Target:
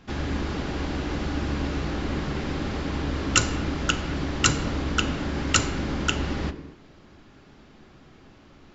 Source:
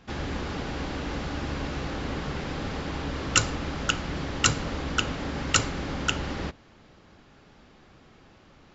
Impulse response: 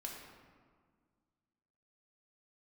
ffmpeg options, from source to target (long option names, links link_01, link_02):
-filter_complex "[0:a]asplit=2[link_01][link_02];[link_02]lowshelf=frequency=470:width_type=q:width=1.5:gain=6[link_03];[1:a]atrim=start_sample=2205,afade=type=out:start_time=0.3:duration=0.01,atrim=end_sample=13671[link_04];[link_03][link_04]afir=irnorm=-1:irlink=0,volume=-3.5dB[link_05];[link_01][link_05]amix=inputs=2:normalize=0,volume=-1.5dB"